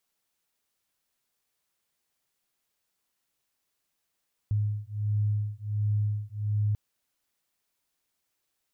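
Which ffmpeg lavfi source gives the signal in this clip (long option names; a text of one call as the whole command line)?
ffmpeg -f lavfi -i "aevalsrc='0.0376*(sin(2*PI*104*t)+sin(2*PI*105.4*t))':duration=2.24:sample_rate=44100" out.wav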